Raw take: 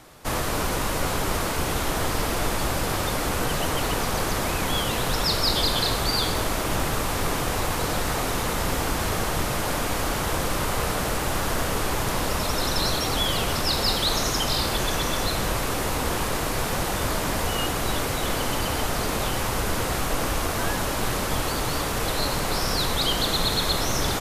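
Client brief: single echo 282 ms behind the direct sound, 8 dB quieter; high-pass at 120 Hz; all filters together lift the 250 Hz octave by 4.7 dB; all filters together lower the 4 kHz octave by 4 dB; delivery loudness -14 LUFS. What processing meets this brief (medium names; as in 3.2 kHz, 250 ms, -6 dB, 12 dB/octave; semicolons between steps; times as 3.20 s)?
high-pass 120 Hz; peaking EQ 250 Hz +6.5 dB; peaking EQ 4 kHz -5 dB; delay 282 ms -8 dB; trim +10.5 dB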